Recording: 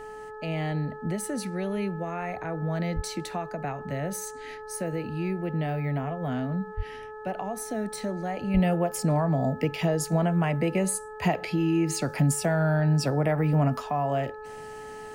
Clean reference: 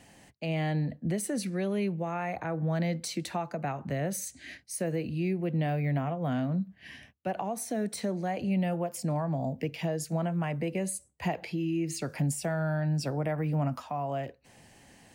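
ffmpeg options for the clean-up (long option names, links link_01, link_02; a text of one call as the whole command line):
ffmpeg -i in.wav -filter_complex "[0:a]bandreject=frequency=429.7:width_type=h:width=4,bandreject=frequency=859.4:width_type=h:width=4,bandreject=frequency=1289.1:width_type=h:width=4,bandreject=frequency=1718.8:width_type=h:width=4,asplit=3[link_01][link_02][link_03];[link_01]afade=type=out:start_time=2.95:duration=0.02[link_04];[link_02]highpass=frequency=140:width=0.5412,highpass=frequency=140:width=1.3066,afade=type=in:start_time=2.95:duration=0.02,afade=type=out:start_time=3.07:duration=0.02[link_05];[link_03]afade=type=in:start_time=3.07:duration=0.02[link_06];[link_04][link_05][link_06]amix=inputs=3:normalize=0,asplit=3[link_07][link_08][link_09];[link_07]afade=type=out:start_time=6.76:duration=0.02[link_10];[link_08]highpass=frequency=140:width=0.5412,highpass=frequency=140:width=1.3066,afade=type=in:start_time=6.76:duration=0.02,afade=type=out:start_time=6.88:duration=0.02[link_11];[link_09]afade=type=in:start_time=6.88:duration=0.02[link_12];[link_10][link_11][link_12]amix=inputs=3:normalize=0,asplit=3[link_13][link_14][link_15];[link_13]afade=type=out:start_time=8.53:duration=0.02[link_16];[link_14]highpass=frequency=140:width=0.5412,highpass=frequency=140:width=1.3066,afade=type=in:start_time=8.53:duration=0.02,afade=type=out:start_time=8.65:duration=0.02[link_17];[link_15]afade=type=in:start_time=8.65:duration=0.02[link_18];[link_16][link_17][link_18]amix=inputs=3:normalize=0,agate=range=-21dB:threshold=-33dB,asetnsamples=nb_out_samples=441:pad=0,asendcmd='8.54 volume volume -6dB',volume=0dB" out.wav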